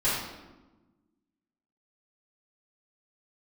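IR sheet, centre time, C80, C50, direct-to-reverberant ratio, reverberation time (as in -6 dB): 69 ms, 3.5 dB, 0.0 dB, -13.0 dB, 1.2 s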